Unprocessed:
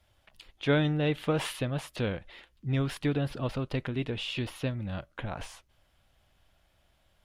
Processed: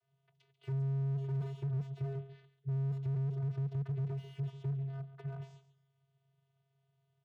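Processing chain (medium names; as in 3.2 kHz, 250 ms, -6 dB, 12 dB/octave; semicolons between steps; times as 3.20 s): vocoder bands 16, square 136 Hz; feedback delay 140 ms, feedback 24%, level -14 dB; slew-rate limiter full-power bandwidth 3.4 Hz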